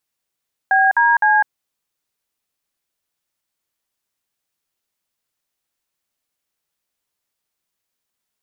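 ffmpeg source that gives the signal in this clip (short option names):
-f lavfi -i "aevalsrc='0.211*clip(min(mod(t,0.256),0.203-mod(t,0.256))/0.002,0,1)*(eq(floor(t/0.256),0)*(sin(2*PI*770*mod(t,0.256))+sin(2*PI*1633*mod(t,0.256)))+eq(floor(t/0.256),1)*(sin(2*PI*941*mod(t,0.256))+sin(2*PI*1633*mod(t,0.256)))+eq(floor(t/0.256),2)*(sin(2*PI*852*mod(t,0.256))+sin(2*PI*1633*mod(t,0.256))))':d=0.768:s=44100"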